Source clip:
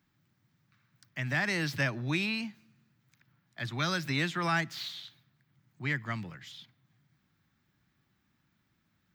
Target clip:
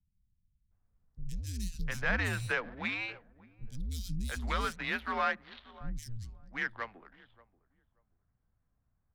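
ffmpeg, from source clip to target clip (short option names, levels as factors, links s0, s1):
-filter_complex "[0:a]asplit=2[s0][s1];[s1]adelay=582,lowpass=f=3200:p=1,volume=0.126,asplit=2[s2][s3];[s3]adelay=582,lowpass=f=3200:p=1,volume=0.24[s4];[s2][s4]amix=inputs=2:normalize=0[s5];[s0][s5]amix=inputs=2:normalize=0,adynamicsmooth=sensitivity=6:basefreq=800,afreqshift=-110,acrossover=split=220|4400[s6][s7][s8];[s8]adelay=120[s9];[s7]adelay=710[s10];[s6][s10][s9]amix=inputs=3:normalize=0"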